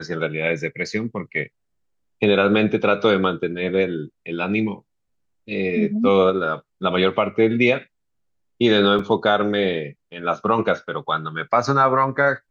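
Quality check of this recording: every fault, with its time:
8.99 gap 3.9 ms

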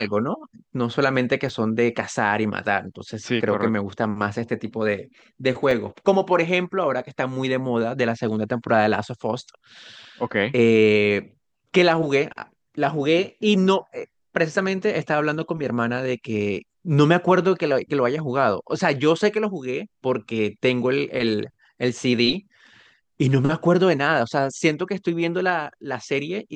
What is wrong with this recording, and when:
1.49 gap 2.1 ms
5.71 gap 3 ms

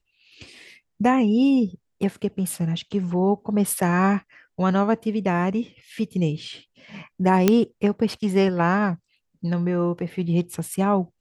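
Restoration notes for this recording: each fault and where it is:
7.48 pop -3 dBFS

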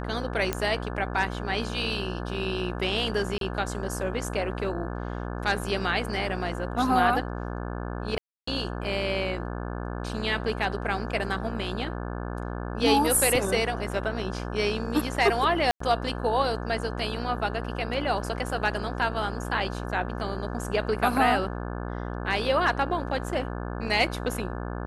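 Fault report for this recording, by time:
buzz 60 Hz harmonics 29 -33 dBFS
0.53 pop -11 dBFS
3.38–3.41 gap 32 ms
8.18–8.47 gap 0.294 s
15.71–15.8 gap 94 ms

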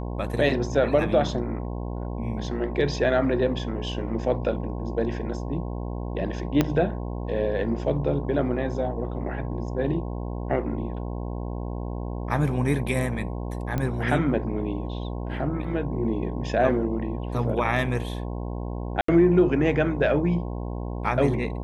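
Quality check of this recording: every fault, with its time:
buzz 60 Hz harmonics 18 -31 dBFS
6.61 pop -7 dBFS
13.78 pop -15 dBFS
19.01–19.08 gap 74 ms

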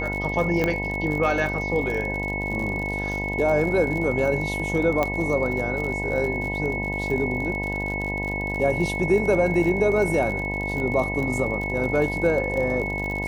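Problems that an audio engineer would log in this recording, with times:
buzz 50 Hz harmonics 20 -30 dBFS
crackle 51/s -29 dBFS
tone 2200 Hz -28 dBFS
0.64 pop -10 dBFS
5.03 pop -10 dBFS

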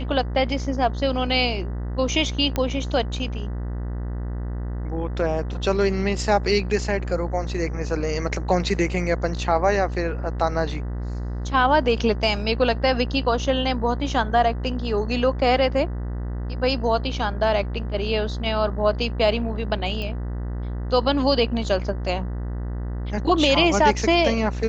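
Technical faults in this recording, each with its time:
buzz 60 Hz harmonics 33 -28 dBFS
2.56 pop -10 dBFS
20.02 pop -19 dBFS

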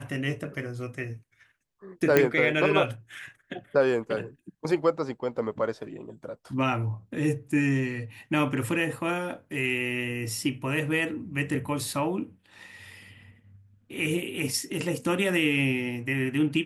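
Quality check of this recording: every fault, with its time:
2.17 pop -7 dBFS

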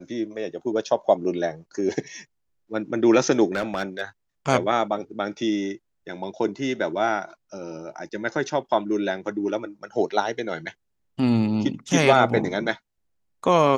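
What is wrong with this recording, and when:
3.54–4.01 clipped -20 dBFS

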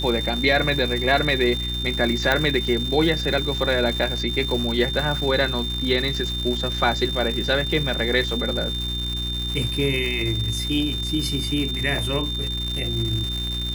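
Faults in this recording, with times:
crackle 380/s -27 dBFS
hum 60 Hz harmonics 6 -29 dBFS
tone 3600 Hz -27 dBFS
2.32 pop -6 dBFS

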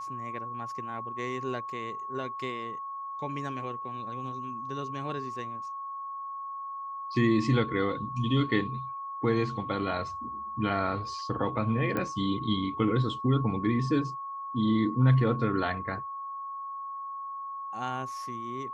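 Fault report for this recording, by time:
tone 1100 Hz -35 dBFS
11.97 pop -18 dBFS

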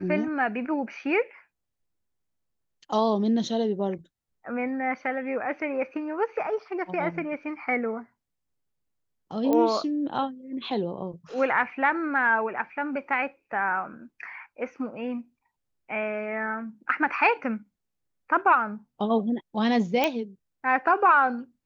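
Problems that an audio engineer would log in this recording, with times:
9.53 pop -13 dBFS
20.04 pop -9 dBFS

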